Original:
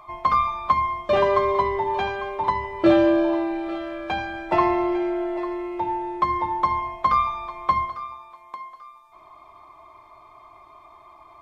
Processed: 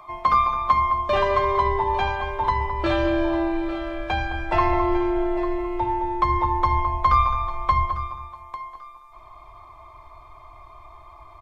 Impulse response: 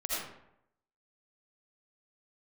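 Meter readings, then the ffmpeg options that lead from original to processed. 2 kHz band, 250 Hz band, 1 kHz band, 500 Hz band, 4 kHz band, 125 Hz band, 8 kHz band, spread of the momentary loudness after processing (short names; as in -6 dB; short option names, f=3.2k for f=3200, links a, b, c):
+1.5 dB, -2.5 dB, +1.5 dB, -2.0 dB, +1.5 dB, +9.0 dB, n/a, 9 LU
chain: -filter_complex "[0:a]asubboost=boost=9:cutoff=73,acrossover=split=100|930[a][b][c];[b]alimiter=limit=-20dB:level=0:latency=1[d];[a][d][c]amix=inputs=3:normalize=0,asplit=2[e][f];[f]adelay=213,lowpass=f=1.4k:p=1,volume=-8dB,asplit=2[g][h];[h]adelay=213,lowpass=f=1.4k:p=1,volume=0.33,asplit=2[i][j];[j]adelay=213,lowpass=f=1.4k:p=1,volume=0.33,asplit=2[k][l];[l]adelay=213,lowpass=f=1.4k:p=1,volume=0.33[m];[e][g][i][k][m]amix=inputs=5:normalize=0,volume=1.5dB"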